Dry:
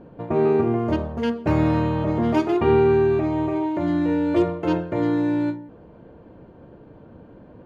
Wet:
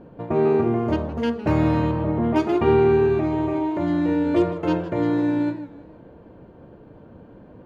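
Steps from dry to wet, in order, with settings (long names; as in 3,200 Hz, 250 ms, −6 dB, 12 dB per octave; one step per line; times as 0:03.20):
0:01.91–0:02.36: high-frequency loss of the air 440 metres
feedback echo with a swinging delay time 162 ms, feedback 42%, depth 173 cents, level −15.5 dB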